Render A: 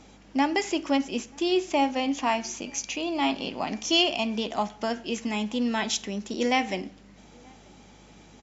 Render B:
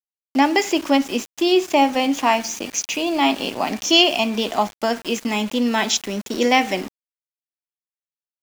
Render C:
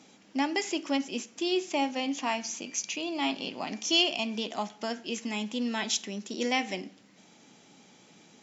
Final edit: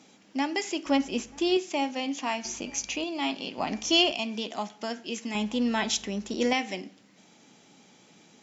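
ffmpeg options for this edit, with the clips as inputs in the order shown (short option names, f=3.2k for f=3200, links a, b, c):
-filter_complex "[0:a]asplit=4[a][b][c][d];[2:a]asplit=5[e][f][g][h][i];[e]atrim=end=0.862[j];[a]atrim=start=0.858:end=1.572[k];[f]atrim=start=1.568:end=2.452[l];[b]atrim=start=2.448:end=3.042[m];[g]atrim=start=3.038:end=3.582[n];[c]atrim=start=3.578:end=4.122[o];[h]atrim=start=4.118:end=5.352[p];[d]atrim=start=5.348:end=6.532[q];[i]atrim=start=6.528[r];[j][k]acrossfade=d=0.004:c1=hsin:c2=hsin[s];[s][l]acrossfade=d=0.004:c1=hsin:c2=hsin[t];[t][m]acrossfade=d=0.004:c1=hsin:c2=hsin[u];[u][n]acrossfade=d=0.004:c1=hsin:c2=hsin[v];[v][o]acrossfade=d=0.004:c1=hsin:c2=hsin[w];[w][p]acrossfade=d=0.004:c1=hsin:c2=hsin[x];[x][q]acrossfade=d=0.004:c1=hsin:c2=hsin[y];[y][r]acrossfade=d=0.004:c1=hsin:c2=hsin"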